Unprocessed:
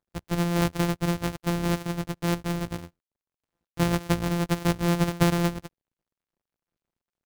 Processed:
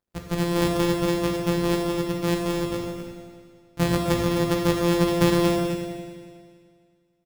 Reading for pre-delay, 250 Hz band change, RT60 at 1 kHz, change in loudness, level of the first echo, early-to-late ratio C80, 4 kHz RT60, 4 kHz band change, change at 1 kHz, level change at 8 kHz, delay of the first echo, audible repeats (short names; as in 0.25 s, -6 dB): 16 ms, +3.5 dB, 2.0 s, +3.0 dB, -8.5 dB, 2.0 dB, 1.9 s, +4.0 dB, +2.5 dB, +2.0 dB, 0.259 s, 1